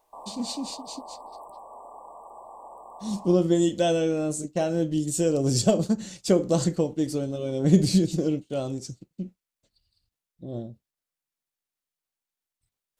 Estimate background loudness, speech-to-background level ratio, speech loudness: −44.0 LKFS, 19.0 dB, −25.0 LKFS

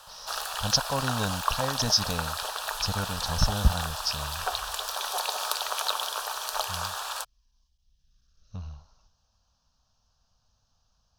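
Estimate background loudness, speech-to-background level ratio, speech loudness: −31.0 LKFS, 2.0 dB, −29.0 LKFS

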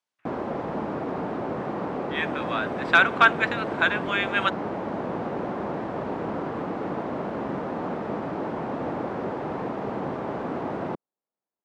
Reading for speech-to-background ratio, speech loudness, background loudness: 8.0 dB, −23.0 LKFS, −31.0 LKFS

